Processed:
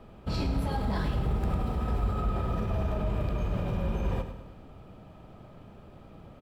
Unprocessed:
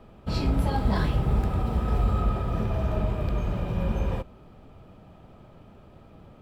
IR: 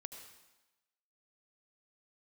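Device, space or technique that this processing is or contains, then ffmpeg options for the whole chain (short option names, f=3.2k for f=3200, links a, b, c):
clipper into limiter: -af "asoftclip=type=hard:threshold=-16dB,alimiter=limit=-22dB:level=0:latency=1:release=51,aecho=1:1:103|206|309|412|515|618:0.316|0.161|0.0823|0.0419|0.0214|0.0109"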